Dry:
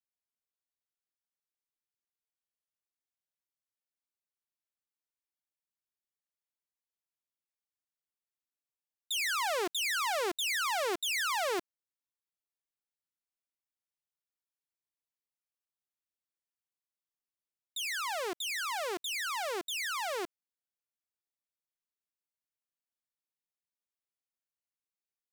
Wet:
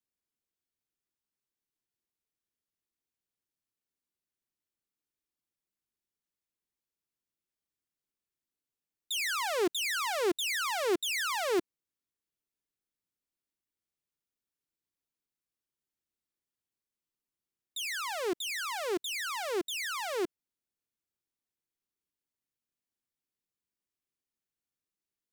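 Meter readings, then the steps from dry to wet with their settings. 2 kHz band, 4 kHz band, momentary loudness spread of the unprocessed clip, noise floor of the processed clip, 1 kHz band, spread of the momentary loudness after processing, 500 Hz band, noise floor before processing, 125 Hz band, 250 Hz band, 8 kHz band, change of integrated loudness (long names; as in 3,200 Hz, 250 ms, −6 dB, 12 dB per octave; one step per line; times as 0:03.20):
−0.5 dB, 0.0 dB, 6 LU, below −85 dBFS, −1.0 dB, 5 LU, +4.0 dB, below −85 dBFS, can't be measured, +8.0 dB, 0.0 dB, +0.5 dB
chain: low shelf with overshoot 480 Hz +6.5 dB, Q 1.5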